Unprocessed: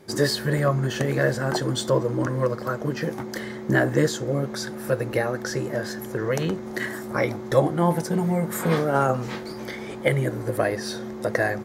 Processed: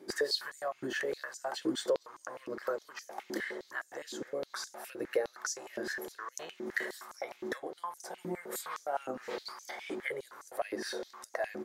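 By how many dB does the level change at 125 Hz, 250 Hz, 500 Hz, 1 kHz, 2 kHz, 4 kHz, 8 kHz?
−32.5, −16.5, −13.0, −12.0, −10.0, −7.5, −8.0 decibels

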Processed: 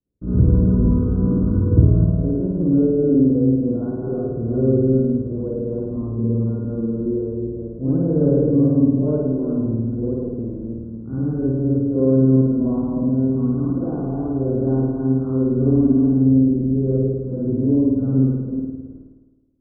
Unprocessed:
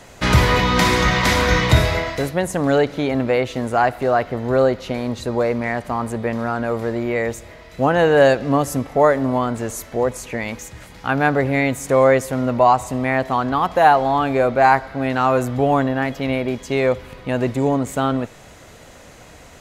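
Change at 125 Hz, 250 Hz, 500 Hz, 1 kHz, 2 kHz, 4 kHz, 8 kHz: +5.0 dB, +5.5 dB, −5.0 dB, −24.5 dB, below −30 dB, below −40 dB, below −40 dB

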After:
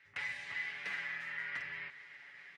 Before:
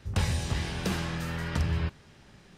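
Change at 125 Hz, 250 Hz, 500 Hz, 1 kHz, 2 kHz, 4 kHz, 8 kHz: −35.0 dB, −30.5 dB, −21.5 dB, −13.0 dB, +1.0 dB, −11.5 dB, below −20 dB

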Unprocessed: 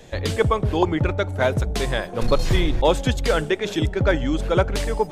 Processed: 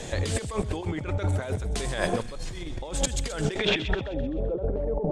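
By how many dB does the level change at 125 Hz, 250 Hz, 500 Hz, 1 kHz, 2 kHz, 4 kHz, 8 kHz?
−6.5, −7.5, −8.5, −11.0, −6.5, −4.0, +1.5 decibels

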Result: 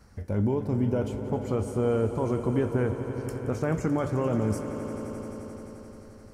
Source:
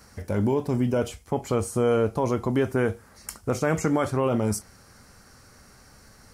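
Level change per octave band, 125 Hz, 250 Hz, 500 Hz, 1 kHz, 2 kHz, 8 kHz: 0.0, −1.5, −3.0, −5.0, −7.0, −11.0 decibels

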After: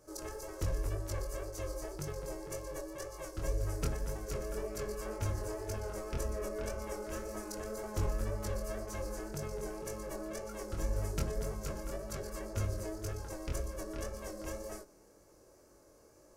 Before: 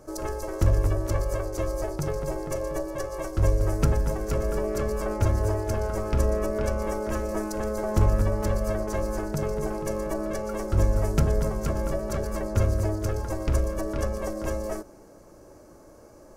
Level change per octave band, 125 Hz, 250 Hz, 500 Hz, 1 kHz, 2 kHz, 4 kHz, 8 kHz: −13.5, −13.0, −12.0, −12.0, −9.0, −5.5, −5.0 decibels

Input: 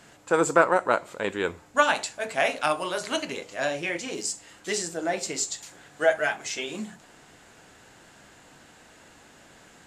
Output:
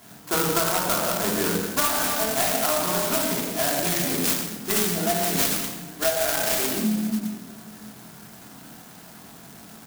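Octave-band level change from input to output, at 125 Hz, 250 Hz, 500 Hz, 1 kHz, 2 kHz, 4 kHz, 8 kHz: +10.5, +7.0, −0.5, 0.0, −2.0, +6.5, +7.5 decibels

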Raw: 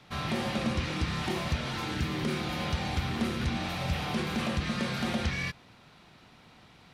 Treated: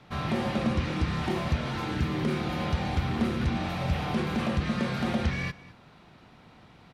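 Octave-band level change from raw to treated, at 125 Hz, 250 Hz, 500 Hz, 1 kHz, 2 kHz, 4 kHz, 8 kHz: +3.5, +3.5, +3.0, +2.0, −0.5, −3.0, −4.5 decibels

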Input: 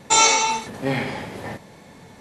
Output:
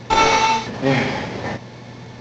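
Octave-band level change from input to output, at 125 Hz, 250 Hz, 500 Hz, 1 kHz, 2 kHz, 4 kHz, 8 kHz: +7.0, +6.5, +6.0, +4.0, +3.0, −1.0, −11.0 decibels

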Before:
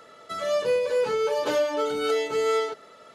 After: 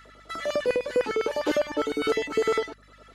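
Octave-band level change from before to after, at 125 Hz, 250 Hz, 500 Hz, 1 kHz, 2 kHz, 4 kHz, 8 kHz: +2.0, +5.0, −2.0, −3.0, +1.5, −1.5, −2.5 decibels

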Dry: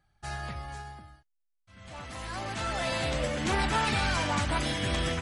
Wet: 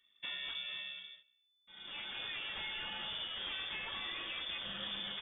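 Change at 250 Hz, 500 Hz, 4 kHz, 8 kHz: −22.0 dB, −21.5 dB, −2.0 dB, below −40 dB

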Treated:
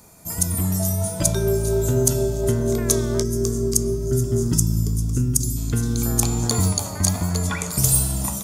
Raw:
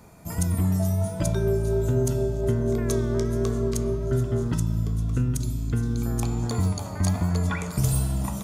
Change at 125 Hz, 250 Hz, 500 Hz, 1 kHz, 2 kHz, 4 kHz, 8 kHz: +2.0, +2.5, +3.5, +3.0, +3.5, +10.5, +14.5 decibels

